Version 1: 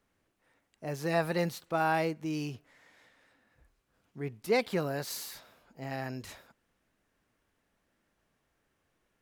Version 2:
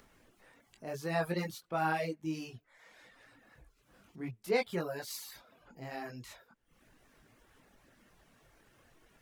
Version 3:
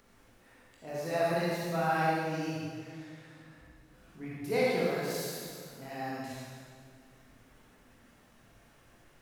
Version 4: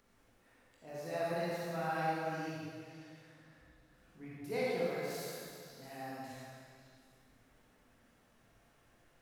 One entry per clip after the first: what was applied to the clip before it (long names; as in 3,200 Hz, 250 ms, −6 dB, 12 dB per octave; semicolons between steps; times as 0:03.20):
multi-voice chorus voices 6, 0.55 Hz, delay 21 ms, depth 4.8 ms; reverb reduction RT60 0.56 s; upward compression, threshold −50 dBFS
convolution reverb RT60 2.0 s, pre-delay 37 ms, DRR −6 dB; level −3 dB
echo through a band-pass that steps 183 ms, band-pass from 600 Hz, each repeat 1.4 octaves, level −3.5 dB; level −7.5 dB